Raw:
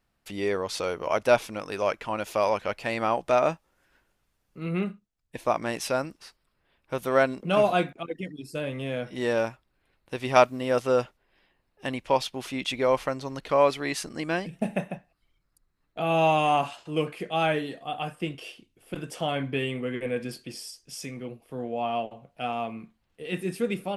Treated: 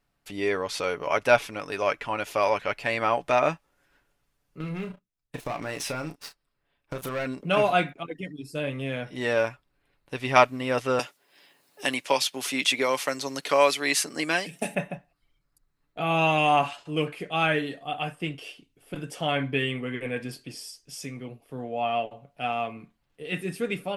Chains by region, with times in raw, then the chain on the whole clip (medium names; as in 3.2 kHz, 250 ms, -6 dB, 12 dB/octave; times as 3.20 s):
4.60–7.26 s: waveshaping leveller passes 3 + compression 5:1, threshold -31 dBFS + doubling 32 ms -9 dB
10.99–14.75 s: high-pass 190 Hz + tone controls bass -3 dB, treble +13 dB + three bands compressed up and down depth 40%
whole clip: dynamic bell 2.1 kHz, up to +6 dB, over -41 dBFS, Q 0.96; comb 7 ms, depth 37%; trim -1 dB